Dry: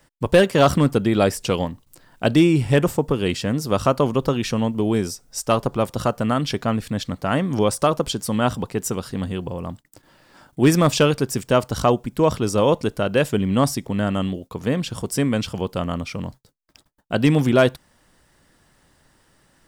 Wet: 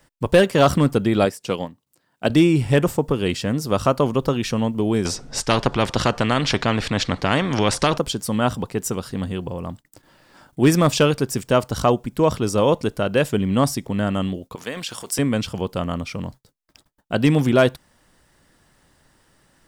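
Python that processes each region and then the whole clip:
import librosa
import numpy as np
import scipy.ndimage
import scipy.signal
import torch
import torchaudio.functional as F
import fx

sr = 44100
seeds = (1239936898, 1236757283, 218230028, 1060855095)

y = fx.chain(x, sr, fx.highpass(hz=130.0, slope=12),
    fx.upward_expand(threshold_db=-40.0, expansion=1.5), at=(1.25, 2.3))
y = fx.chain(y, sr, fx.lowpass(hz=4500.0, slope=12),
    fx.low_shelf(hz=450.0, db=8.0),
    fx.spectral_comp(ratio=2.0), at=(5.05, 7.98))
y = fx.chain(y, sr, fx.highpass(hz=1400.0, slope=6),
    fx.transient(attack_db=4, sustain_db=9), at=(14.55, 15.19))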